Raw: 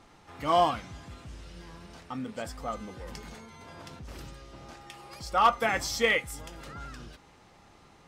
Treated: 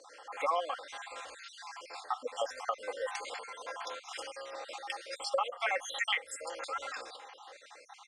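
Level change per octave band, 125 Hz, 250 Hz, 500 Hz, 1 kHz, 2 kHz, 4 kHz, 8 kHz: under -35 dB, -21.0 dB, -5.0 dB, -7.0 dB, -4.5 dB, -2.0 dB, -3.5 dB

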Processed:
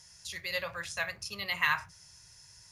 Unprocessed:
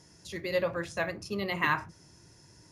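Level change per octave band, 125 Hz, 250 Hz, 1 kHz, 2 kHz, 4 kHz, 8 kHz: -9.5 dB, -15.0 dB, -3.5 dB, +1.0 dB, +4.0 dB, +5.5 dB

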